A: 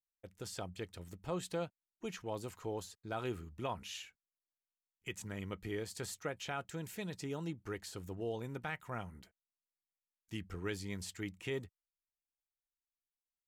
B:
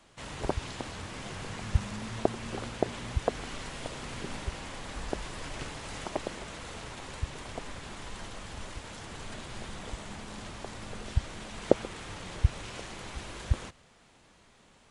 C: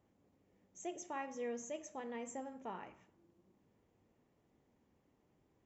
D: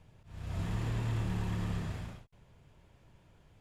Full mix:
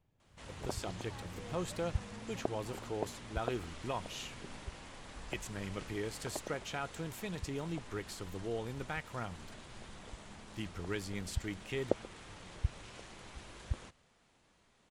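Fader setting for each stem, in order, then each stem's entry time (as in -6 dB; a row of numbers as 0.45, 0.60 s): +1.0, -9.5, -11.0, -16.5 dB; 0.25, 0.20, 0.00, 0.00 s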